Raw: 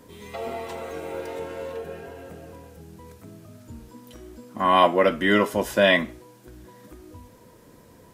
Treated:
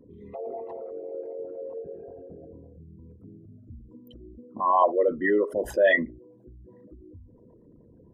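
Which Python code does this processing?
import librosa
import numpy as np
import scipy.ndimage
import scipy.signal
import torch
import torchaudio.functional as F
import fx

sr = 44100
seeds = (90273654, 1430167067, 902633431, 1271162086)

y = fx.envelope_sharpen(x, sr, power=3.0)
y = fx.doubler(y, sr, ms=12.0, db=-8, at=(5.7, 6.1))
y = y * 10.0 ** (-3.0 / 20.0)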